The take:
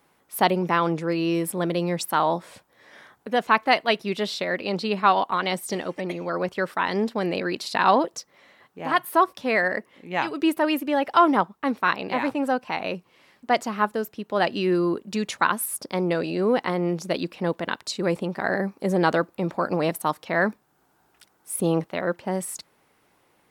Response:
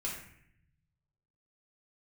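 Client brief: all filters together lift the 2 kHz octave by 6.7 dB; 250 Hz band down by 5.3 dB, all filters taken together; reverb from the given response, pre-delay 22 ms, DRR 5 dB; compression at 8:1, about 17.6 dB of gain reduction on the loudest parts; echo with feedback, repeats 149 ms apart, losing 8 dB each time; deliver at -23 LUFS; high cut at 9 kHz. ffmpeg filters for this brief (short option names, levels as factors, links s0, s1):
-filter_complex "[0:a]lowpass=9000,equalizer=f=250:t=o:g=-8.5,equalizer=f=2000:t=o:g=8.5,acompressor=threshold=0.0355:ratio=8,aecho=1:1:149|298|447|596|745:0.398|0.159|0.0637|0.0255|0.0102,asplit=2[s0][s1];[1:a]atrim=start_sample=2205,adelay=22[s2];[s1][s2]afir=irnorm=-1:irlink=0,volume=0.422[s3];[s0][s3]amix=inputs=2:normalize=0,volume=2.82"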